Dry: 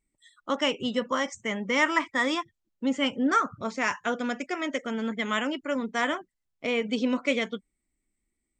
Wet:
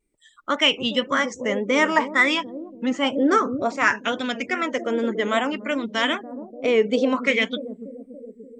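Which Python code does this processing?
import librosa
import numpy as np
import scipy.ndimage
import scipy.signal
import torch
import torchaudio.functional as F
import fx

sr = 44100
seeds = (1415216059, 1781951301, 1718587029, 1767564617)

y = fx.echo_bbd(x, sr, ms=289, stages=1024, feedback_pct=56, wet_db=-8)
y = fx.wow_flutter(y, sr, seeds[0], rate_hz=2.1, depth_cents=80.0)
y = fx.bell_lfo(y, sr, hz=0.59, low_hz=390.0, high_hz=3500.0, db=11)
y = y * librosa.db_to_amplitude(2.5)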